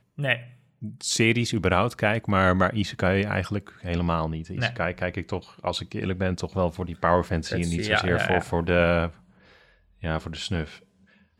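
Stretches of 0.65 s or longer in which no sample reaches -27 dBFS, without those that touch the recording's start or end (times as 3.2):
9.08–10.04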